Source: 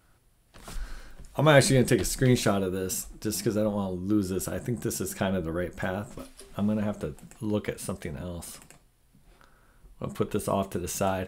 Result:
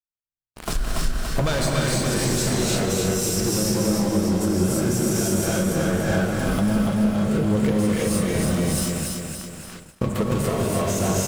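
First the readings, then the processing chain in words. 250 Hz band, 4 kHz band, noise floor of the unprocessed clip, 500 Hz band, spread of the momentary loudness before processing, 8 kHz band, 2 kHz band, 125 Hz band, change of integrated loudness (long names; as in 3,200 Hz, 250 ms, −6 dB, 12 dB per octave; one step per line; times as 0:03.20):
+7.5 dB, +7.5 dB, −63 dBFS, +4.0 dB, 18 LU, +9.0 dB, +3.5 dB, +6.5 dB, +5.5 dB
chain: leveller curve on the samples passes 5
reverb whose tail is shaped and stops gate 370 ms rising, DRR −6.5 dB
dynamic equaliser 5,800 Hz, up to +5 dB, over −31 dBFS, Q 1.1
downward compressor 20 to 1, threshold −20 dBFS, peak gain reduction 23 dB
low-shelf EQ 440 Hz +4 dB
repeating echo 286 ms, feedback 52%, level −3.5 dB
noise gate −38 dBFS, range −41 dB
level −2.5 dB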